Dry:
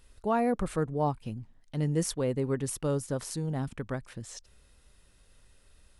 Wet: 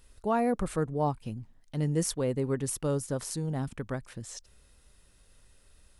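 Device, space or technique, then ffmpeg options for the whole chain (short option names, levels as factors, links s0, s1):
exciter from parts: -filter_complex "[0:a]asplit=2[s0][s1];[s1]highpass=4200,asoftclip=type=tanh:threshold=0.0944,volume=0.355[s2];[s0][s2]amix=inputs=2:normalize=0"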